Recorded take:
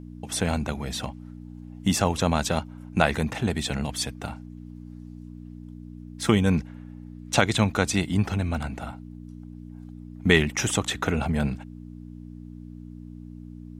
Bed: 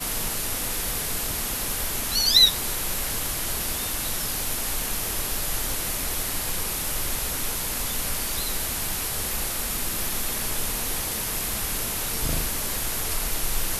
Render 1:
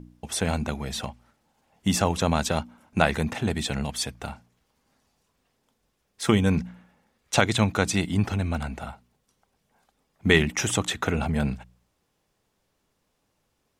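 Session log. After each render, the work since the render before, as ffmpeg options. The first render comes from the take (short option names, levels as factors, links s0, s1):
-af "bandreject=f=60:t=h:w=4,bandreject=f=120:t=h:w=4,bandreject=f=180:t=h:w=4,bandreject=f=240:t=h:w=4,bandreject=f=300:t=h:w=4"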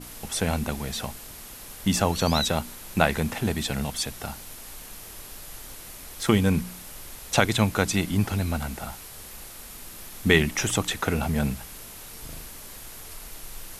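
-filter_complex "[1:a]volume=0.2[s0];[0:a][s0]amix=inputs=2:normalize=0"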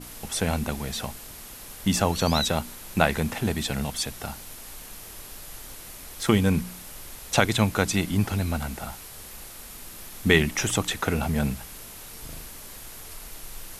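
-af anull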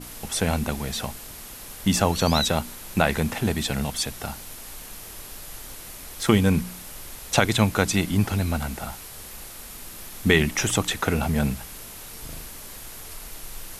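-af "volume=1.26,alimiter=limit=0.708:level=0:latency=1"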